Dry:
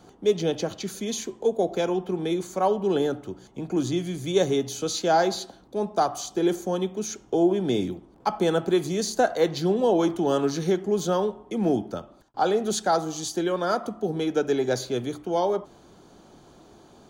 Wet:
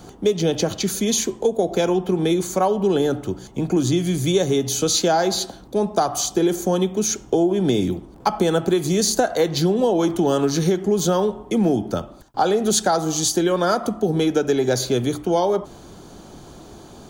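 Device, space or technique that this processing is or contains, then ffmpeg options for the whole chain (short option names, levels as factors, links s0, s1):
ASMR close-microphone chain: -af "lowshelf=f=140:g=7.5,acompressor=threshold=0.0708:ratio=6,highshelf=f=6100:g=7.5,volume=2.51"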